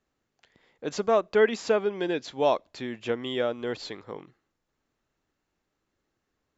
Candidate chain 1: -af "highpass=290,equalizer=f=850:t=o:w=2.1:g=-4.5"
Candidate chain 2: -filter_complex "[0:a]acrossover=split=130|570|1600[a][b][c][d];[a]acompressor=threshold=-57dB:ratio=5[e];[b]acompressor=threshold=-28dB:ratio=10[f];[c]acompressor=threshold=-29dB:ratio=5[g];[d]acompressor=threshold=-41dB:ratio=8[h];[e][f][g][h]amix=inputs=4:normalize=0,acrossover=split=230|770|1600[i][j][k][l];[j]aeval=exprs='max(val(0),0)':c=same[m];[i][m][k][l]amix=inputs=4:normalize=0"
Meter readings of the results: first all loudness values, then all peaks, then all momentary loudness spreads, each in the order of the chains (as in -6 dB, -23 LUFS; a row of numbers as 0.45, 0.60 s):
-31.0, -34.5 LUFS; -12.0, -15.5 dBFS; 15, 10 LU